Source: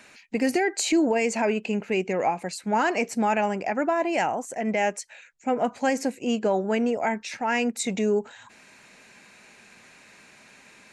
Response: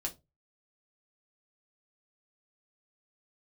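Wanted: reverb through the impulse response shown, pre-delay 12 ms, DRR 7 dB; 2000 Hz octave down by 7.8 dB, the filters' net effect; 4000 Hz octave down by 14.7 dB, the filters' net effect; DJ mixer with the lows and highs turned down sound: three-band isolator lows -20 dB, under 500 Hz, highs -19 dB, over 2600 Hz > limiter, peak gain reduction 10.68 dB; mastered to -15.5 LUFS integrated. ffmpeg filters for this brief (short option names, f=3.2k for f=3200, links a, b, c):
-filter_complex "[0:a]equalizer=f=2k:t=o:g=-6,equalizer=f=4k:t=o:g=-5,asplit=2[a][b];[1:a]atrim=start_sample=2205,adelay=12[c];[b][c]afir=irnorm=-1:irlink=0,volume=-8dB[d];[a][d]amix=inputs=2:normalize=0,acrossover=split=500 2600:gain=0.1 1 0.112[e][f][g];[e][f][g]amix=inputs=3:normalize=0,volume=20dB,alimiter=limit=-6dB:level=0:latency=1"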